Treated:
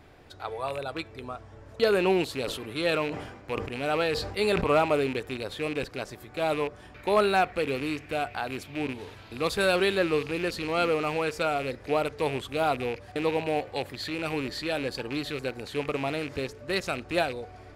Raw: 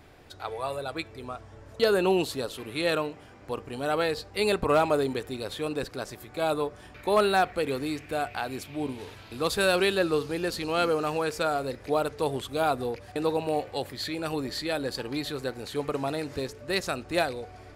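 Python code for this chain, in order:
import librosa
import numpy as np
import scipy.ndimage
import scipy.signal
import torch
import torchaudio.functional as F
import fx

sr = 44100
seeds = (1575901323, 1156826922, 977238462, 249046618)

y = fx.rattle_buzz(x, sr, strikes_db=-38.0, level_db=-25.0)
y = fx.high_shelf(y, sr, hz=5500.0, db=-6.0)
y = fx.sustainer(y, sr, db_per_s=56.0, at=(2.41, 4.65))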